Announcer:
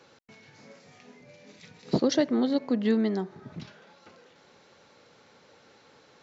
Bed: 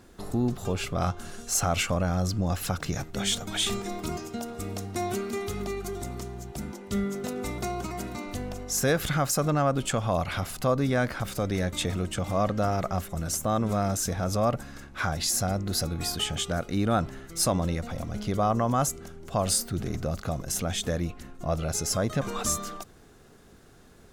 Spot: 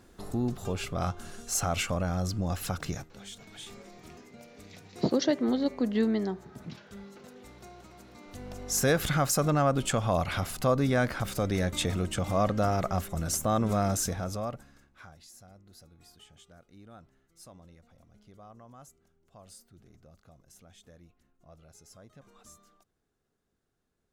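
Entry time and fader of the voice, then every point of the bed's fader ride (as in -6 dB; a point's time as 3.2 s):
3.10 s, -2.0 dB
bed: 2.92 s -3.5 dB
3.17 s -18 dB
8.07 s -18 dB
8.73 s -0.5 dB
14 s -0.5 dB
15.28 s -26.5 dB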